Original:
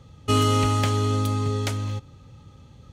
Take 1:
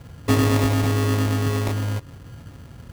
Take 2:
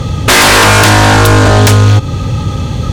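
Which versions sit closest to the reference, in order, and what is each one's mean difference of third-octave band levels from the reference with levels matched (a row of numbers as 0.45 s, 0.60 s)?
1, 2; 4.5 dB, 9.5 dB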